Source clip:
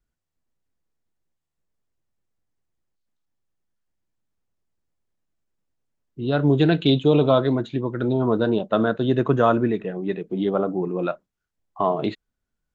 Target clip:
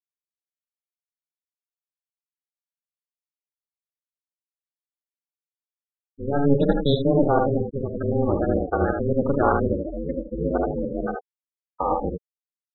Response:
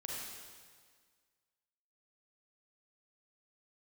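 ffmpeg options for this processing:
-af "aecho=1:1:49|77:0.398|0.631,afftfilt=real='re*gte(hypot(re,im),0.178)':imag='im*gte(hypot(re,im),0.178)':win_size=1024:overlap=0.75,aeval=exprs='val(0)*sin(2*PI*140*n/s)':channel_layout=same"

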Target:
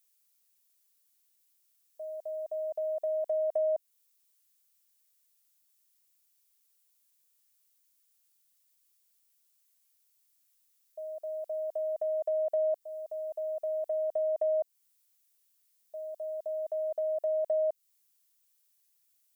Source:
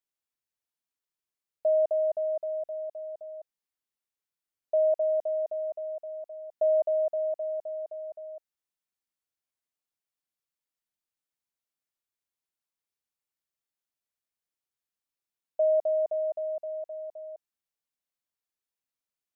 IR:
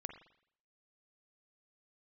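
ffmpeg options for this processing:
-af "areverse,acompressor=threshold=-33dB:ratio=2,crystalizer=i=6.5:c=0"

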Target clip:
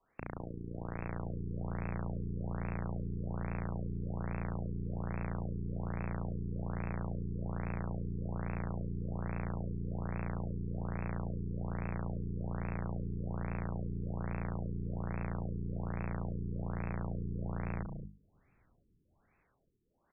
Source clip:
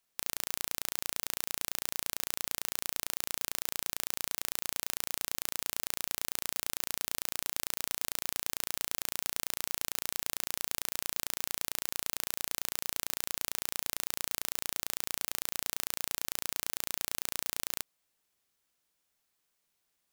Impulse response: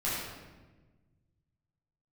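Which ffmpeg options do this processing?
-filter_complex "[0:a]lowpass=5600,lowshelf=frequency=170:gain=4,bandreject=frequency=50:width_type=h:width=6,bandreject=frequency=100:width_type=h:width=6,bandreject=frequency=150:width_type=h:width=6,bandreject=frequency=200:width_type=h:width=6,bandreject=frequency=250:width_type=h:width=6,acrossover=split=210[link_01][link_02];[link_01]dynaudnorm=framelen=110:gausssize=21:maxgain=14dB[link_03];[link_02]alimiter=level_in=2dB:limit=-24dB:level=0:latency=1:release=393,volume=-2dB[link_04];[link_03][link_04]amix=inputs=2:normalize=0,aeval=exprs='(tanh(89.1*val(0)+0.7)-tanh(0.7))/89.1':channel_layout=same,aecho=1:1:183.7|224.5:0.282|0.447,afftfilt=real='re*lt(b*sr/1024,430*pow(2700/430,0.5+0.5*sin(2*PI*1.2*pts/sr)))':imag='im*lt(b*sr/1024,430*pow(2700/430,0.5+0.5*sin(2*PI*1.2*pts/sr)))':win_size=1024:overlap=0.75,volume=16dB"

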